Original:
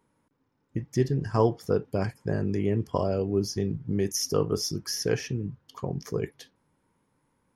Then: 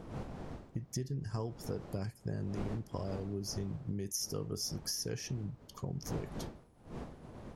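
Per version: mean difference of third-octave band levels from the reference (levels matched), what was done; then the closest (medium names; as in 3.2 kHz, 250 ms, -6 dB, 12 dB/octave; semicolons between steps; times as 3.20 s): 6.5 dB: wind noise 580 Hz -37 dBFS; tone controls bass +7 dB, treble +11 dB; compression 6:1, threshold -26 dBFS, peak gain reduction 12.5 dB; trim -8.5 dB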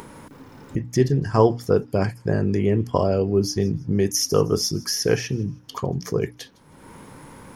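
1.5 dB: hum notches 60/120/180/240/300 Hz; upward compressor, threshold -30 dBFS; feedback echo behind a high-pass 158 ms, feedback 33%, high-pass 3.4 kHz, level -21.5 dB; trim +6.5 dB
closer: second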